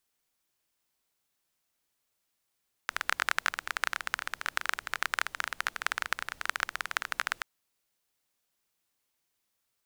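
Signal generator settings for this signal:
rain-like ticks over hiss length 4.53 s, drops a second 19, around 1,500 Hz, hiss −23.5 dB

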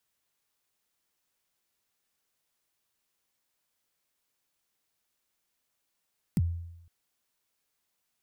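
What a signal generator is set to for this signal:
synth kick length 0.51 s, from 230 Hz, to 85 Hz, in 36 ms, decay 0.86 s, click on, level −20 dB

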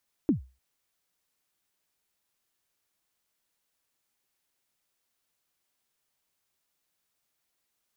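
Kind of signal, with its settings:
synth kick length 0.30 s, from 340 Hz, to 64 Hz, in 118 ms, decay 0.30 s, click off, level −16 dB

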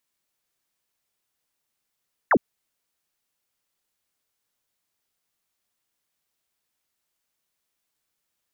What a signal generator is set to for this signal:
single falling chirp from 2,100 Hz, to 180 Hz, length 0.06 s sine, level −14 dB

